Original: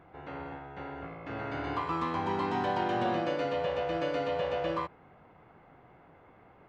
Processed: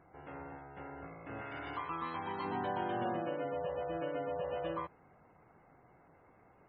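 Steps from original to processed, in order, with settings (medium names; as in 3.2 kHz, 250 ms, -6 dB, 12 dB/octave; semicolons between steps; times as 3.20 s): 3.12–4.48 s: low-pass 2.9 kHz 6 dB/octave; spectral gate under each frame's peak -25 dB strong; 1.41–2.45 s: tilt shelf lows -5.5 dB, about 1.2 kHz; trim -6 dB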